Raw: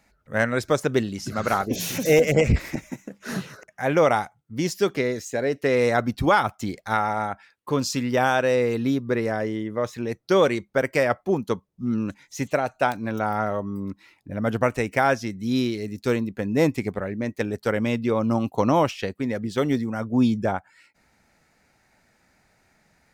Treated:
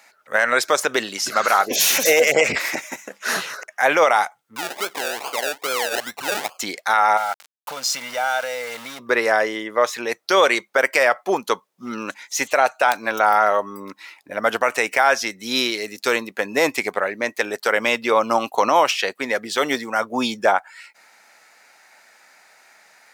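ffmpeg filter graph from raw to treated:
-filter_complex "[0:a]asettb=1/sr,asplit=3[s0][s1][s2];[s0]atrim=end=4.564[s3];[s1]atrim=start=4.56:end=6.59,asetpts=PTS-STARTPTS,afade=t=in:d=0.004:c=qsin,afade=t=out:st=2.026:d=0.004:c=qsin,acompressor=threshold=0.02:ratio=2.5:attack=3.2:release=140:knee=1:detection=peak,acrusher=samples=33:mix=1:aa=0.000001:lfo=1:lforange=19.8:lforate=2.4[s4];[s2]atrim=start=6.586[s5];[s3][s4]acrossfade=d=0.004:c1=hsin:c2=qsin[s6];[s6][s5]acrossfade=d=0.004:c1=qsin:c2=hsin,asettb=1/sr,asplit=3[s7][s8][s9];[s7]atrim=end=7.174[s10];[s8]atrim=start=7.17:end=8.99,asetpts=PTS-STARTPTS,afade=t=in:d=0.004:c=qsin,afade=t=out:st=1.816:d=0.004:c=qsin,acompressor=threshold=0.0178:ratio=4:attack=3.2:release=140:knee=1:detection=peak,aecho=1:1:1.4:0.84,atrim=end_sample=80262,aeval=exprs='val(0)*gte(abs(val(0)),0.0075)':c=same[s11];[s9]atrim=start=8.986[s12];[s10][s11]acrossfade=d=0.004:c1=hsin:c2=qsin[s13];[s13][s12]acrossfade=d=0.004:c1=qsin:c2=hsin,highpass=750,alimiter=level_in=7.5:limit=0.891:release=50:level=0:latency=1,volume=0.631"

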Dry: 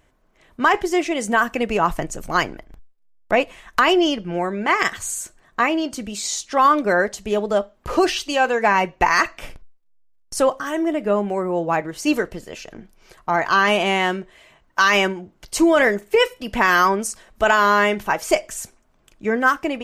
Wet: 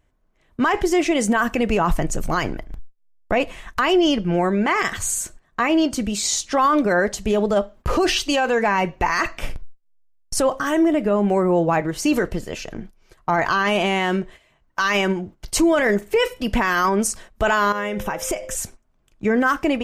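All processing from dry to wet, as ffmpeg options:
-filter_complex "[0:a]asettb=1/sr,asplit=3[s0][s1][s2];[s0]atrim=end=17.724[s3];[s1]atrim=start=17.72:end=18.55,asetpts=PTS-STARTPTS,afade=t=in:d=0.004:c=qsin,afade=t=out:st=0.826:d=0.004:c=qsin,acompressor=threshold=0.0562:ratio=10:attack=3.2:release=140:knee=1:detection=peak,aeval=exprs='val(0)+0.0126*sin(2*PI*520*n/s)':c=same,asuperstop=centerf=4400:order=4:qfactor=6.1[s4];[s2]atrim=start=18.546[s5];[s3][s4]acrossfade=d=0.004:c1=hsin:c2=qsin[s6];[s6][s5]acrossfade=d=0.004:c1=qsin:c2=hsin,agate=range=0.224:threshold=0.00631:ratio=16:detection=peak,lowshelf=f=190:g=8,alimiter=limit=0.211:level=0:latency=1:release=39,volume=1.5"

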